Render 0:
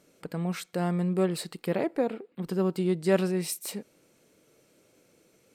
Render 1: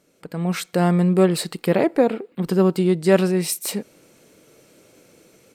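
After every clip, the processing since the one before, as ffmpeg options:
-af "dynaudnorm=f=290:g=3:m=10.5dB"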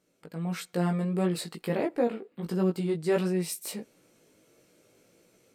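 -af "flanger=delay=16.5:depth=2.3:speed=1.5,volume=-7dB"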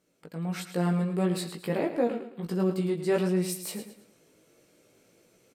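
-af "aecho=1:1:109|218|327|436:0.299|0.102|0.0345|0.0117"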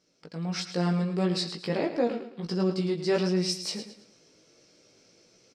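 -af "lowpass=f=5.3k:t=q:w=5.1"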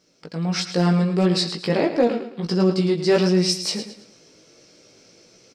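-af "volume=17.5dB,asoftclip=hard,volume=-17.5dB,volume=8dB"

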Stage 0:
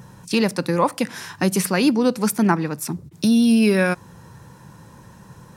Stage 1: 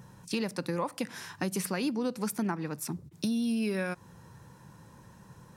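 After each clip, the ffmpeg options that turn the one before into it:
-af "acompressor=threshold=-19dB:ratio=5,volume=-8.5dB"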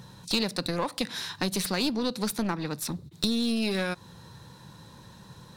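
-af "equalizer=f=3.9k:t=o:w=0.5:g=15,aeval=exprs='clip(val(0),-1,0.0237)':c=same,volume=3.5dB"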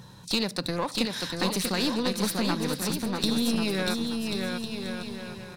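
-af "aecho=1:1:640|1088|1402|1621|1775:0.631|0.398|0.251|0.158|0.1"

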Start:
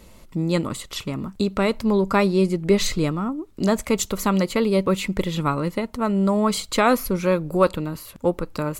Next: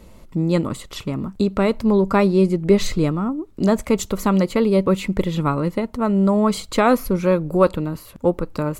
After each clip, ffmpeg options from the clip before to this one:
-af "tiltshelf=f=1.4k:g=3.5"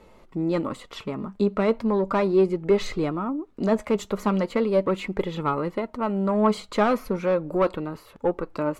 -filter_complex "[0:a]asplit=2[a][b];[b]highpass=f=720:p=1,volume=16dB,asoftclip=type=tanh:threshold=-2dB[c];[a][c]amix=inputs=2:normalize=0,lowpass=f=1.3k:p=1,volume=-6dB,flanger=delay=2.3:depth=2.6:regen=64:speed=0.37:shape=sinusoidal,volume=-3.5dB"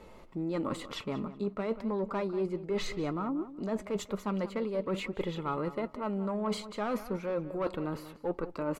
-filter_complex "[0:a]areverse,acompressor=threshold=-31dB:ratio=5,areverse,asplit=2[a][b];[b]adelay=187,lowpass=f=3.8k:p=1,volume=-14dB,asplit=2[c][d];[d]adelay=187,lowpass=f=3.8k:p=1,volume=0.22[e];[a][c][e]amix=inputs=3:normalize=0"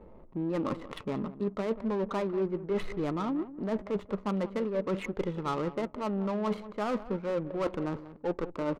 -af "adynamicsmooth=sensitivity=7.5:basefreq=560,volume=2dB"

